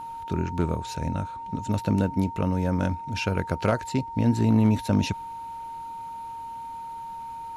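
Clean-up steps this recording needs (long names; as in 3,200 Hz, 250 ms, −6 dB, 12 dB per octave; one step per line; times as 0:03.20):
clipped peaks rebuilt −13 dBFS
notch filter 920 Hz, Q 30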